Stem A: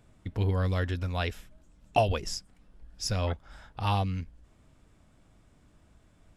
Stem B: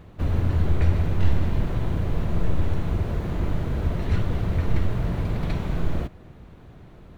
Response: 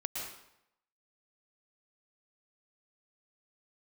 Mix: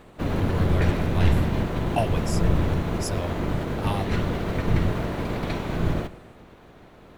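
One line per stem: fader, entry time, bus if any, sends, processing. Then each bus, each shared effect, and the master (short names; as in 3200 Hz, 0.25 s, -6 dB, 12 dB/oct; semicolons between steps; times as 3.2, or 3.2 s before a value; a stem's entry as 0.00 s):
-1.5 dB, 0.00 s, no send, resonant high shelf 7000 Hz +7 dB, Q 1.5
-4.5 dB, 0.00 s, send -15.5 dB, spectral limiter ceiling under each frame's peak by 15 dB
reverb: on, RT60 0.80 s, pre-delay 0.105 s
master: dry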